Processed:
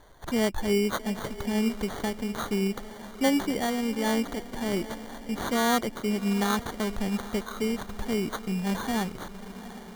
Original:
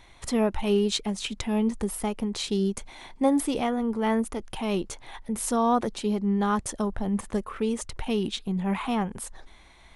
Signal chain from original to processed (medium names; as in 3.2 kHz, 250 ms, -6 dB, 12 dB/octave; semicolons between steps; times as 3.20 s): echo that smears into a reverb 771 ms, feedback 55%, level -14 dB; sample-and-hold 17×; trim -1.5 dB